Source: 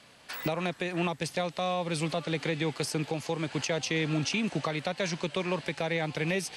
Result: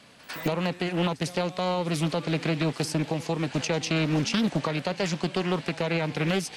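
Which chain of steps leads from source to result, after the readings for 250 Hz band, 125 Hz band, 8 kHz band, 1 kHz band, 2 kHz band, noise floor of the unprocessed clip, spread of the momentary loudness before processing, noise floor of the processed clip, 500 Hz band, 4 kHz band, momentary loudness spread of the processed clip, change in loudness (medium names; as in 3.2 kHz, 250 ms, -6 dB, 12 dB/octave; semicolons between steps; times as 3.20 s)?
+5.5 dB, +5.5 dB, +1.5 dB, +2.5 dB, +1.0 dB, -56 dBFS, 4 LU, -49 dBFS, +3.0 dB, +3.0 dB, 4 LU, +3.5 dB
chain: peaking EQ 220 Hz +4.5 dB 1.4 oct; pre-echo 100 ms -18 dB; loudspeaker Doppler distortion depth 0.55 ms; trim +2 dB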